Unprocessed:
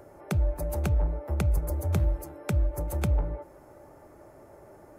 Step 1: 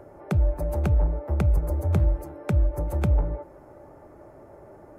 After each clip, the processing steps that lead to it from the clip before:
high-shelf EQ 2,700 Hz −11.5 dB
level +4 dB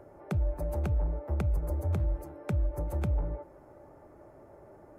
brickwall limiter −16.5 dBFS, peak gain reduction 5 dB
level −5.5 dB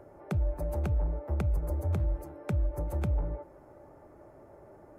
no processing that can be heard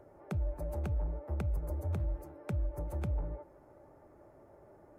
pitch vibrato 13 Hz 32 cents
level −5 dB

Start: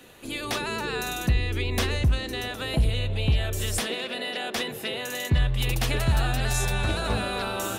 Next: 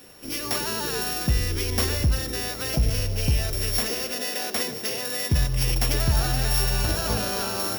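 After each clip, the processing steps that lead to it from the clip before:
samples sorted by size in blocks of 8 samples
high-shelf EQ 10,000 Hz +10 dB
on a send at −13 dB: convolution reverb RT60 1.1 s, pre-delay 78 ms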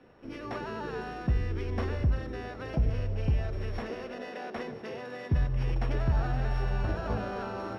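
low-pass filter 1,600 Hz 12 dB per octave
level −4.5 dB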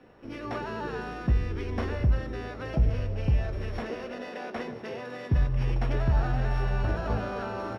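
double-tracking delay 17 ms −10.5 dB
level +2 dB

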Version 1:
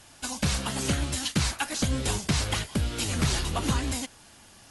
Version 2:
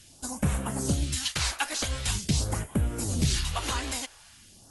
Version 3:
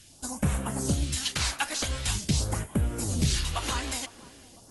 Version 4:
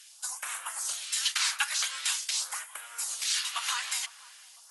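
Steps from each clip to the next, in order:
all-pass phaser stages 2, 0.45 Hz, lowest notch 130–4,400 Hz
feedback echo with a band-pass in the loop 503 ms, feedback 65%, band-pass 410 Hz, level −16 dB
high-pass filter 1,100 Hz 24 dB per octave; level +2 dB

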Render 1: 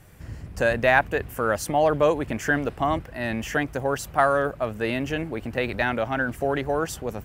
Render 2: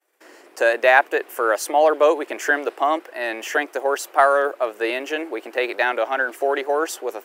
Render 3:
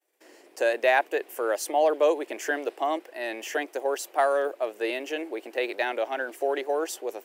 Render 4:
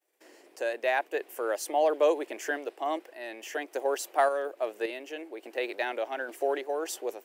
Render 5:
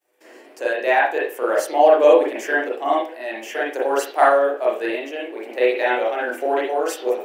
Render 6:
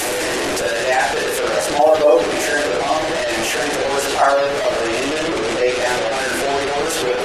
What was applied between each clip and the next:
downward expander −39 dBFS; elliptic high-pass filter 340 Hz, stop band 60 dB; level +5 dB
parametric band 1,300 Hz −8.5 dB 0.93 octaves; level −4.5 dB
sample-and-hold tremolo; level −1 dB
convolution reverb, pre-delay 32 ms, DRR −6 dB; level +4 dB
linear delta modulator 64 kbit/s, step −14 dBFS; gate on every frequency bin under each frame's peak −30 dB strong; feedback delay with all-pass diffusion 595 ms, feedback 42%, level −13.5 dB

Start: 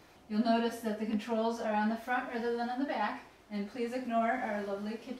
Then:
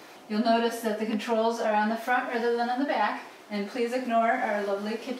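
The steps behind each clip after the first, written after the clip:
high-pass filter 270 Hz 12 dB per octave
in parallel at +2.5 dB: downward compressor, threshold −40 dBFS, peak gain reduction 13.5 dB
on the sum: level +4.5 dB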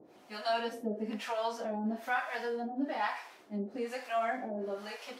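two-band tremolo in antiphase 1.1 Hz, depth 100%, crossover 590 Hz
level −3.5 dB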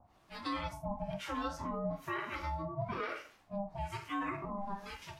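noise reduction from a noise print of the clip's start 6 dB
ring modulation 400 Hz
brickwall limiter −28 dBFS, peak gain reduction 6.5 dB
level +1 dB

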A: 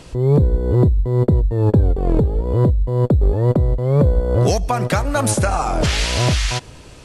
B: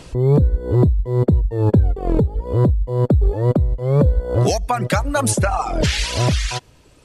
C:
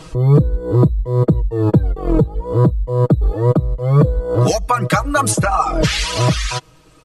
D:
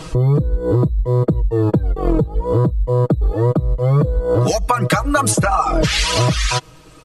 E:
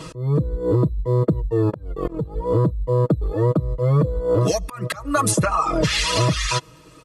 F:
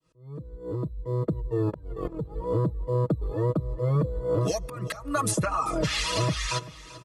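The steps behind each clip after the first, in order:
reverb reduction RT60 1.5 s; level +1 dB
parametric band 1,200 Hz +10.5 dB 0.22 octaves; comb filter 6.3 ms, depth 81%
downward compressor, threshold −17 dBFS, peak gain reduction 10.5 dB; level +5 dB
volume swells 257 ms; notch comb filter 760 Hz; level −2 dB
fade in at the beginning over 1.56 s; repeating echo 389 ms, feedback 41%, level −17.5 dB; level −7 dB

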